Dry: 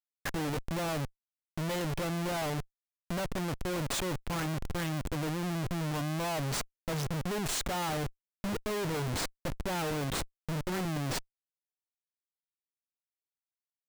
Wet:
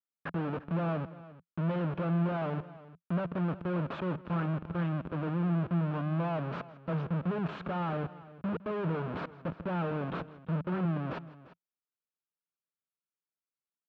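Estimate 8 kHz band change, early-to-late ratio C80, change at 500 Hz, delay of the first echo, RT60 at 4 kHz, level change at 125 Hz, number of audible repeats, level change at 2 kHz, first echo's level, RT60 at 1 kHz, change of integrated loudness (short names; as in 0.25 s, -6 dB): under -35 dB, none, 0.0 dB, 0.16 s, none, +3.0 dB, 2, -4.5 dB, -19.5 dB, none, +0.5 dB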